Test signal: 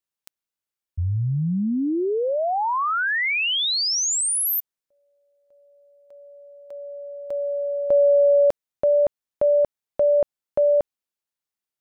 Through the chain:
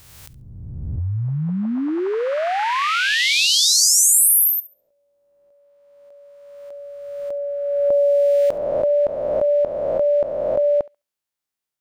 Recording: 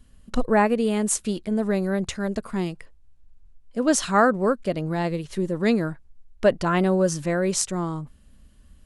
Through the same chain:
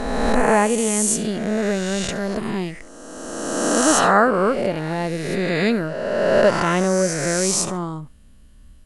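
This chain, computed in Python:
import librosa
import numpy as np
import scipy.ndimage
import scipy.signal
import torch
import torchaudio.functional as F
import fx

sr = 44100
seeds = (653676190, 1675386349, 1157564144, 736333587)

y = fx.spec_swells(x, sr, rise_s=1.97)
y = fx.echo_thinned(y, sr, ms=69, feedback_pct=20, hz=990.0, wet_db=-18)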